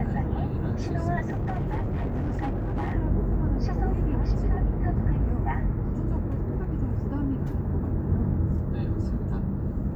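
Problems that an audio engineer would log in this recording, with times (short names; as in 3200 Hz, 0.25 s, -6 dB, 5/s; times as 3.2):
1.25–2.93 clipped -24 dBFS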